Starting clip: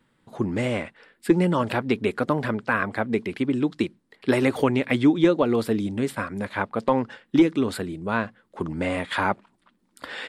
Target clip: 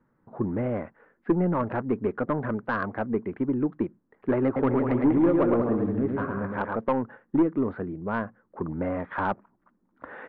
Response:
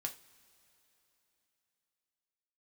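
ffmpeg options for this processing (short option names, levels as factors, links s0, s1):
-filter_complex "[0:a]lowpass=f=1500:w=0.5412,lowpass=f=1500:w=1.3066,asettb=1/sr,asplit=3[s0][s1][s2];[s0]atrim=end=4.454[s3];[s1]atrim=start=4.45:end=6.76,asetpts=PTS-STARTPTS,afade=t=in:d=0.004:c=qsin,afade=t=out:st=2.306:d=0.004:c=qsin,aecho=1:1:110|192.5|254.4|300.8|335.6:0.631|0.398|0.251|0.158|0.1,atrim=end_sample=101871[s4];[s2]atrim=start=6.756[s5];[s3][s4]acrossfade=d=0.004:c1=hsin:c2=qsin[s6];[s6][s5]acrossfade=d=0.004:c1=qsin:c2=hsin,aeval=exprs='(tanh(4.47*val(0)+0.15)-tanh(0.15))/4.47':c=same,volume=0.841"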